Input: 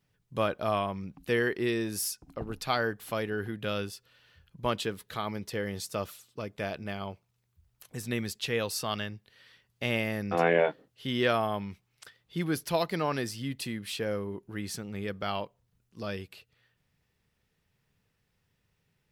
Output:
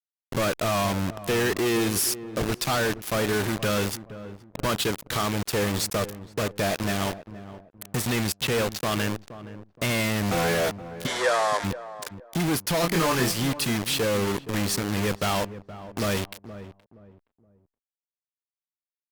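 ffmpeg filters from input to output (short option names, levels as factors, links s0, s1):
-filter_complex "[0:a]adynamicequalizer=threshold=0.0126:dfrequency=650:dqfactor=0.96:tfrequency=650:tqfactor=0.96:attack=5:release=100:ratio=0.375:range=2:mode=cutabove:tftype=bell,asplit=2[s0][s1];[s1]acompressor=threshold=0.00794:ratio=6,volume=1.12[s2];[s0][s2]amix=inputs=2:normalize=0,volume=21.1,asoftclip=hard,volume=0.0473,asettb=1/sr,asplit=3[s3][s4][s5];[s3]atrim=end=8.324[s6];[s4]atrim=start=8.32:end=9.15,asetpts=PTS-STARTPTS,afade=t=in:d=0.004:c=qsin,afade=t=out:st=0.826:d=0.004:c=qsin,adynamicsmooth=sensitivity=4.5:basefreq=1700[s7];[s5]atrim=start=9.146[s8];[s6][s7]acrossfade=d=0.004:c1=hsin:c2=qsin[s9];[s9][s8]acrossfade=d=0.004:c1=qsin:c2=hsin,aeval=exprs='sgn(val(0))*max(abs(val(0))-0.00106,0)':c=same,acrusher=bits=5:mix=0:aa=0.000001,asplit=3[s10][s11][s12];[s10]afade=t=out:st=11.06:d=0.02[s13];[s11]highpass=f=450:w=0.5412,highpass=f=450:w=1.3066,equalizer=f=530:t=q:w=4:g=6,equalizer=f=980:t=q:w=4:g=5,equalizer=f=1700:t=q:w=4:g=7,equalizer=f=2700:t=q:w=4:g=-7,lowpass=f=9700:w=0.5412,lowpass=f=9700:w=1.3066,afade=t=in:st=11.06:d=0.02,afade=t=out:st=11.63:d=0.02[s14];[s12]afade=t=in:st=11.63:d=0.02[s15];[s13][s14][s15]amix=inputs=3:normalize=0,asettb=1/sr,asplit=3[s16][s17][s18];[s16]atrim=end=12.814[s19];[s17]atrim=start=12.81:end=13.32,asetpts=PTS-STARTPTS,afade=t=in:d=0.004:c=qsin,afade=t=out:st=0.506:d=0.004:c=qsin,asplit=2[s20][s21];[s21]adelay=24,volume=0.794[s22];[s20][s22]amix=inputs=2:normalize=0,atrim=end_sample=22491[s23];[s18]atrim=start=13.316[s24];[s19][s23]acrossfade=d=0.004:c1=hsin:c2=qsin[s25];[s25][s24]acrossfade=d=0.004:c1=qsin:c2=hsin,asplit=2[s26][s27];[s27]adelay=471,lowpass=f=850:p=1,volume=0.237,asplit=2[s28][s29];[s29]adelay=471,lowpass=f=850:p=1,volume=0.32,asplit=2[s30][s31];[s31]adelay=471,lowpass=f=850:p=1,volume=0.32[s32];[s28][s30][s32]amix=inputs=3:normalize=0[s33];[s26][s33]amix=inputs=2:normalize=0,volume=2.51" -ar 48000 -c:a libopus -b:a 64k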